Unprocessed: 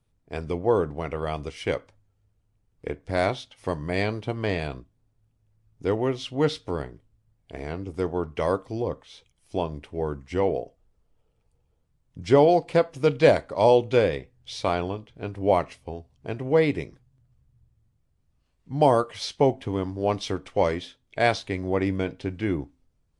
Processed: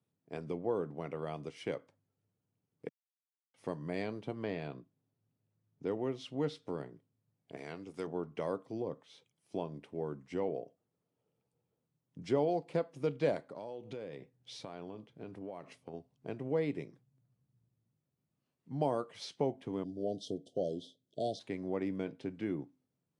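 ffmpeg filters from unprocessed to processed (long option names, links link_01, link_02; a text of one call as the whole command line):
ffmpeg -i in.wav -filter_complex "[0:a]asettb=1/sr,asplit=3[link_01][link_02][link_03];[link_01]atrim=end=4.434[link_04];[link_02]atrim=start=4.43:end=5.87,asetpts=PTS-STARTPTS,afade=type=in:duration=0.004:curve=qsin,afade=type=out:start_time=1.436:duration=0.004:curve=qsin,lowpass=5000[link_05];[link_03]atrim=start=5.866[link_06];[link_04][link_05]acrossfade=duration=0.004:curve1=hsin:curve2=qsin[link_07];[link_07][link_06]acrossfade=duration=0.004:curve1=qsin:curve2=hsin,asettb=1/sr,asplit=3[link_08][link_09][link_10];[link_08]atrim=end=7.574[link_11];[link_09]atrim=start=7.57:end=8.07,asetpts=PTS-STARTPTS,afade=type=in:duration=0.004:curve=qsin,afade=type=out:start_time=0.496:duration=0.004:curve=qsin,tiltshelf=frequency=970:gain=-6.5[link_12];[link_10]atrim=start=8.066[link_13];[link_11][link_12]acrossfade=duration=0.004:curve1=hsin:curve2=qsin[link_14];[link_14][link_13]acrossfade=duration=0.004:curve1=qsin:curve2=hsin,asettb=1/sr,asplit=3[link_15][link_16][link_17];[link_15]atrim=end=13.494[link_18];[link_16]atrim=start=13.49:end=15.94,asetpts=PTS-STARTPTS,afade=type=in:duration=0.004:curve=qsin,afade=type=out:start_time=2.446:duration=0.004:curve=qsin,acompressor=threshold=-32dB:ratio=10:attack=3.2:release=140:knee=1:detection=peak[link_19];[link_17]atrim=start=15.936[link_20];[link_18][link_19]acrossfade=duration=0.004:curve1=hsin:curve2=qsin[link_21];[link_21][link_20]acrossfade=duration=0.004:curve1=qsin:curve2=hsin,asplit=3[link_22][link_23][link_24];[link_22]afade=type=out:start_time=19.83:duration=0.02[link_25];[link_23]asuperstop=centerf=1500:order=20:qfactor=0.63,afade=type=in:start_time=19.83:duration=0.02,afade=type=out:start_time=21.39:duration=0.02[link_26];[link_24]afade=type=in:start_time=21.39:duration=0.02[link_27];[link_25][link_26][link_27]amix=inputs=3:normalize=0,asplit=3[link_28][link_29][link_30];[link_28]atrim=end=2.89,asetpts=PTS-STARTPTS,afade=type=out:start_time=2.886:duration=0.004:curve=hsin[link_31];[link_29]atrim=start=2.89:end=3.54,asetpts=PTS-STARTPTS,volume=0[link_32];[link_30]atrim=start=3.54,asetpts=PTS-STARTPTS,afade=type=in:duration=0.004:curve=hsin[link_33];[link_31][link_32][link_33]concat=n=3:v=0:a=1,acompressor=threshold=-32dB:ratio=1.5,highpass=frequency=140:width=0.5412,highpass=frequency=140:width=1.3066,tiltshelf=frequency=670:gain=3.5,volume=-8dB" out.wav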